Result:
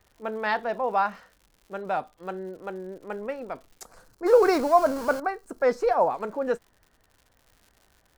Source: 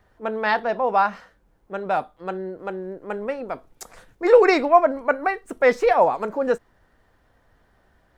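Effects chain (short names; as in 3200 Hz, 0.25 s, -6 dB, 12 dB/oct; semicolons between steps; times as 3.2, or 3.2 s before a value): 4.26–5.2 zero-crossing step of -24.5 dBFS; crackle 150/s -40 dBFS; 3.86–6.1 spectral gain 1700–4000 Hz -8 dB; gain -5 dB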